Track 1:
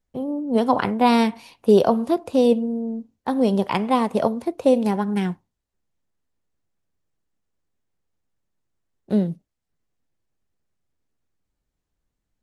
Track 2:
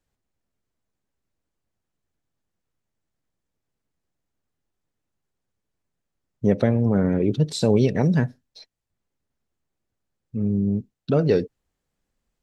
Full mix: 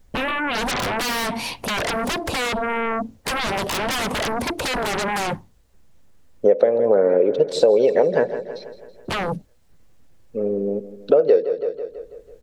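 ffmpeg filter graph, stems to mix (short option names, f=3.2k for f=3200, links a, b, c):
-filter_complex "[0:a]lowshelf=f=130:g=7.5,acompressor=threshold=-23dB:ratio=10,aeval=exprs='0.119*sin(PI/2*7.08*val(0)/0.119)':c=same,volume=-2dB[a];[1:a]highshelf=f=4.2k:g=-11.5,dynaudnorm=f=650:g=7:m=16dB,highpass=f=510:t=q:w=4.6,volume=1.5dB,asplit=3[b][c][d];[c]volume=-15dB[e];[d]apad=whole_len=548057[f];[a][f]sidechaincompress=threshold=-21dB:ratio=8:attack=16:release=609[g];[e]aecho=0:1:164|328|492|656|820|984|1148|1312:1|0.54|0.292|0.157|0.085|0.0459|0.0248|0.0134[h];[g][b][h]amix=inputs=3:normalize=0,acompressor=threshold=-13dB:ratio=4"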